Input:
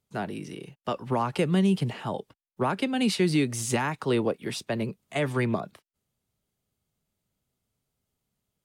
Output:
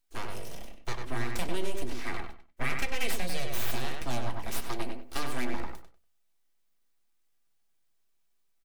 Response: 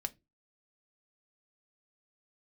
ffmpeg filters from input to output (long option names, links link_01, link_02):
-filter_complex "[0:a]highshelf=frequency=3000:gain=12,aeval=exprs='abs(val(0))':channel_layout=same,asplit=2[link_01][link_02];[link_02]adelay=96,lowpass=frequency=2900:poles=1,volume=-4.5dB,asplit=2[link_03][link_04];[link_04]adelay=96,lowpass=frequency=2900:poles=1,volume=0.25,asplit=2[link_05][link_06];[link_06]adelay=96,lowpass=frequency=2900:poles=1,volume=0.25[link_07];[link_01][link_03][link_05][link_07]amix=inputs=4:normalize=0,acompressor=threshold=-21dB:ratio=6,asettb=1/sr,asplit=3[link_08][link_09][link_10];[link_08]atrim=end=1.984[link_11];[link_09]atrim=start=1.98:end=3.12,asetpts=PTS-STARTPTS,afade=type=in:duration=0.004:curve=qsin,afade=type=out:start_time=1.136:duration=0.004:curve=qsin,equalizer=frequency=2100:width=2.7:gain=9[link_12];[link_10]atrim=start=3.116[link_13];[link_11][link_12]acrossfade=duration=0.004:curve1=hsin:curve2=qsin[link_14];[link_14][link_13]acrossfade=duration=0.004:curve1=qsin:curve2=hsin[link_15];[1:a]atrim=start_sample=2205[link_16];[link_15][link_16]afir=irnorm=-1:irlink=0,volume=-4dB"